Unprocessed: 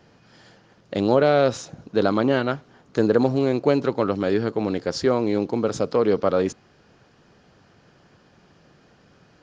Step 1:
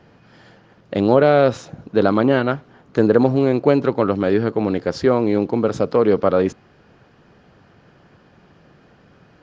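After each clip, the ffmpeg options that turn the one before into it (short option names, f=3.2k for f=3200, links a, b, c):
-af "bass=f=250:g=1,treble=f=4k:g=-10,volume=4dB"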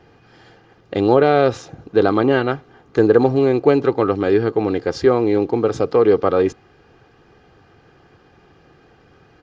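-af "aecho=1:1:2.5:0.48"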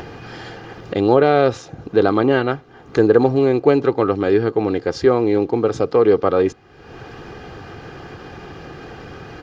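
-af "acompressor=mode=upward:threshold=-21dB:ratio=2.5"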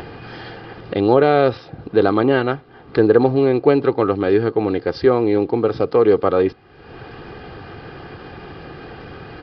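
-af "aresample=11025,aresample=44100"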